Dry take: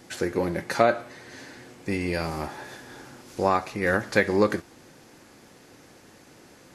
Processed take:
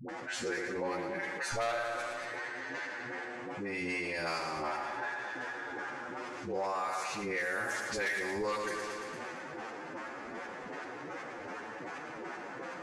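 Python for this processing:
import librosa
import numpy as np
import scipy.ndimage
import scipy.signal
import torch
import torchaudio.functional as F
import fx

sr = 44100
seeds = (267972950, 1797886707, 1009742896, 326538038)

p1 = fx.weighting(x, sr, curve='ITU-R 468')
p2 = fx.env_lowpass(p1, sr, base_hz=1400.0, full_db=-19.0)
p3 = fx.peak_eq(p2, sr, hz=4000.0, db=-12.5, octaves=1.8)
p4 = fx.level_steps(p3, sr, step_db=22)
p5 = p3 + F.gain(torch.from_numpy(p4), -3.0).numpy()
p6 = fx.chopper(p5, sr, hz=5.0, depth_pct=65, duty_pct=30)
p7 = fx.stretch_vocoder(p6, sr, factor=1.9)
p8 = 10.0 ** (-22.5 / 20.0) * np.tanh(p7 / 10.0 ** (-22.5 / 20.0))
p9 = fx.dispersion(p8, sr, late='highs', ms=89.0, hz=440.0)
p10 = p9 + fx.echo_feedback(p9, sr, ms=114, feedback_pct=52, wet_db=-11.0, dry=0)
p11 = fx.env_flatten(p10, sr, amount_pct=70)
y = F.gain(torch.from_numpy(p11), -7.5).numpy()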